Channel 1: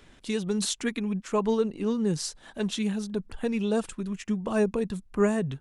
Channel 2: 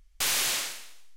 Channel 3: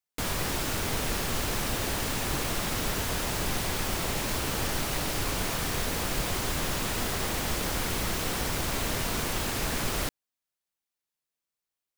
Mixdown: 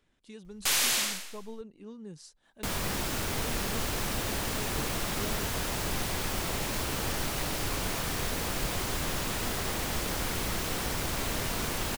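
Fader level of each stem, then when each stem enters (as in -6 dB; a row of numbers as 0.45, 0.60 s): -18.0, +0.5, -2.0 dB; 0.00, 0.45, 2.45 s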